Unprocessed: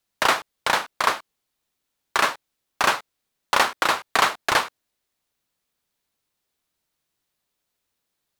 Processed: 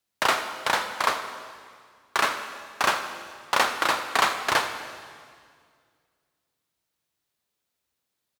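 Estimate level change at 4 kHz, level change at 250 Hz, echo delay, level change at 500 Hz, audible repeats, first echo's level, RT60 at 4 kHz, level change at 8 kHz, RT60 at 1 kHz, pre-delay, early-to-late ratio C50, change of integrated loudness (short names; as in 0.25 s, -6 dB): -2.5 dB, -2.0 dB, 82 ms, -2.0 dB, 1, -16.5 dB, 1.9 s, -2.5 dB, 1.9 s, 29 ms, 8.0 dB, -3.0 dB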